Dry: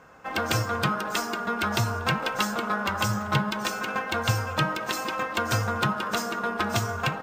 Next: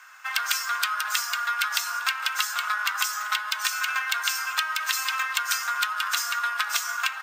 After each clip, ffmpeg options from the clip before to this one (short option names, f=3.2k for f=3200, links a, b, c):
-af "highpass=f=1.3k:w=0.5412,highpass=f=1.3k:w=1.3066,highshelf=f=5.6k:g=6,acompressor=threshold=-30dB:ratio=6,volume=8dB"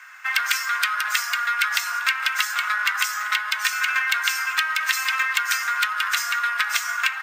-filter_complex "[0:a]equalizer=f=2k:t=o:w=0.79:g=9.5,acrossover=split=1200|7100[a][b][c];[a]volume=29.5dB,asoftclip=hard,volume=-29.5dB[d];[d][b][c]amix=inputs=3:normalize=0"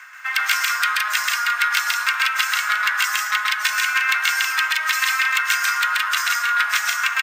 -af "areverse,acompressor=mode=upward:threshold=-29dB:ratio=2.5,areverse,aecho=1:1:131.2|166.2:0.891|0.447"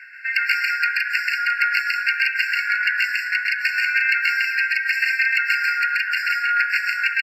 -af "aresample=32000,aresample=44100,highshelf=f=5.3k:t=q:w=1.5:g=-11,afftfilt=real='re*eq(mod(floor(b*sr/1024/1400),2),1)':imag='im*eq(mod(floor(b*sr/1024/1400),2),1)':win_size=1024:overlap=0.75"